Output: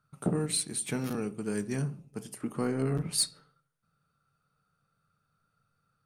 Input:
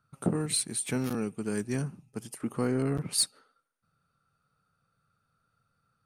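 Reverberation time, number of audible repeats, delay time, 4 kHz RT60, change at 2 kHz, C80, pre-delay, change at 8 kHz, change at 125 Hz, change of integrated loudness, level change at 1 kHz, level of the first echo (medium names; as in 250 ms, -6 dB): 0.55 s, no echo, no echo, 0.35 s, -1.5 dB, 22.5 dB, 5 ms, -1.5 dB, 0.0 dB, -1.0 dB, -1.0 dB, no echo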